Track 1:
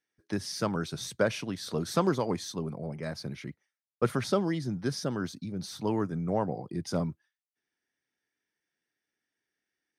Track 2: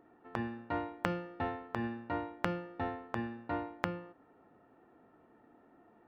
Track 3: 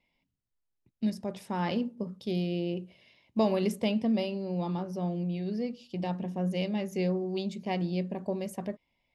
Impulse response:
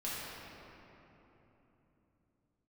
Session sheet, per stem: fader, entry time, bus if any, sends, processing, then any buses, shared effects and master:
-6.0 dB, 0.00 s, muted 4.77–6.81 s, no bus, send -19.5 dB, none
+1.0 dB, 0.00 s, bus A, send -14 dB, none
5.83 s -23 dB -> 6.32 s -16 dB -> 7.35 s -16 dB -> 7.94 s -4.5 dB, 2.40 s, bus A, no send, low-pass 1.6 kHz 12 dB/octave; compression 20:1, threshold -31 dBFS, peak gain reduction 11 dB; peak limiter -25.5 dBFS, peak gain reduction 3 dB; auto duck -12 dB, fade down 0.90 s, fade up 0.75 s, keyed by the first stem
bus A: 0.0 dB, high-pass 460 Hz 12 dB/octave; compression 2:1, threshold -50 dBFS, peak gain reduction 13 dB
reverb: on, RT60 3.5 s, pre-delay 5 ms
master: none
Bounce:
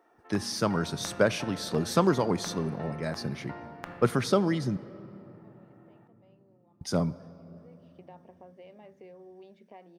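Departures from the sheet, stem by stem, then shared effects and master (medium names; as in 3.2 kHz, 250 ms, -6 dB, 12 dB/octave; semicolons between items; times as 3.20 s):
stem 1 -6.0 dB -> +2.5 dB; stem 3: entry 2.40 s -> 2.05 s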